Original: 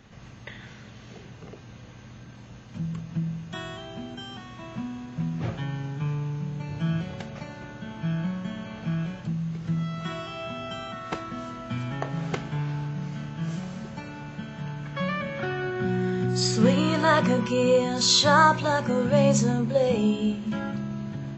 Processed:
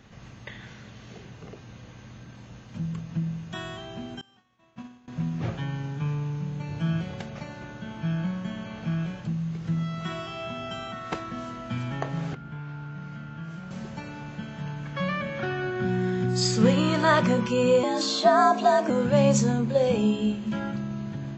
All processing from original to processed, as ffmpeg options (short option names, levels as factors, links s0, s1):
-filter_complex "[0:a]asettb=1/sr,asplit=3[s0][s1][s2];[s0]atrim=end=4.214[s3];[s1]atrim=start=4.21:end=5.08,asetpts=PTS-STARTPTS,afade=t=in:d=0.004:c=qsin,afade=t=out:st=0.866:d=0.004:c=qsin,agate=range=0.0224:threshold=0.0398:ratio=3:release=100:detection=peak,lowshelf=f=210:g=-8.5[s4];[s2]atrim=start=5.076[s5];[s3][s4]acrossfade=d=0.004:c1=hsin:c2=qsin[s6];[s6][s5]acrossfade=d=0.004:c1=qsin:c2=hsin,asettb=1/sr,asplit=3[s7][s8][s9];[s7]atrim=end=12.334[s10];[s8]atrim=start=12.33:end=13.71,asetpts=PTS-STARTPTS,afade=t=in:d=0.004:c=qsin,afade=t=out:st=1.376:d=0.004:c=qsin,aemphasis=mode=reproduction:type=75fm,acrossover=split=270|1000[s11][s12][s13];[s11]acompressor=threshold=0.0126:ratio=4[s14];[s12]acompressor=threshold=0.00251:ratio=4[s15];[s13]acompressor=threshold=0.00282:ratio=4[s16];[s14][s15][s16]amix=inputs=3:normalize=0,aeval=exprs='val(0)+0.00447*sin(2*PI*1400*n/s)':c=same[s17];[s9]atrim=start=13.706[s18];[s10][s17]acrossfade=d=0.004:c1=hsin:c2=qsin[s19];[s19][s18]acrossfade=d=0.004:c1=qsin:c2=hsin,asettb=1/sr,asplit=3[s20][s21][s22];[s20]atrim=end=17.834[s23];[s21]atrim=start=17.83:end=18.9,asetpts=PTS-STARTPTS,afade=t=in:d=0.004:c=qsin,afade=t=out:st=1.066:d=0.004:c=qsin,equalizer=f=620:t=o:w=0.35:g=11.5,acrossover=split=1100|3700[s24][s25][s26];[s24]acompressor=threshold=0.158:ratio=4[s27];[s25]acompressor=threshold=0.0282:ratio=4[s28];[s26]acompressor=threshold=0.0158:ratio=4[s29];[s27][s28][s29]amix=inputs=3:normalize=0,afreqshift=88[s30];[s22]atrim=start=18.896[s31];[s23][s30]acrossfade=d=0.004:c1=hsin:c2=qsin[s32];[s32][s31]acrossfade=d=0.004:c1=qsin:c2=hsin"